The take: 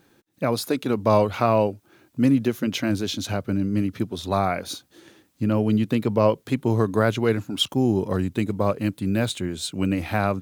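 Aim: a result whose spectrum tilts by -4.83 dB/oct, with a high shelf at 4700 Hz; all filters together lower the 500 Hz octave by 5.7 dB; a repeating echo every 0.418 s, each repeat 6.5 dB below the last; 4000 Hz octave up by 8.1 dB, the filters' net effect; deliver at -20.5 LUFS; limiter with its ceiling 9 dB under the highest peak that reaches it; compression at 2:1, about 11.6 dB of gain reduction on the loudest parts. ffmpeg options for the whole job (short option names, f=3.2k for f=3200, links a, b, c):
-af "equalizer=f=500:t=o:g=-7.5,equalizer=f=4k:t=o:g=8,highshelf=f=4.7k:g=5,acompressor=threshold=-32dB:ratio=2,alimiter=limit=-22dB:level=0:latency=1,aecho=1:1:418|836|1254|1672|2090|2508:0.473|0.222|0.105|0.0491|0.0231|0.0109,volume=12dB"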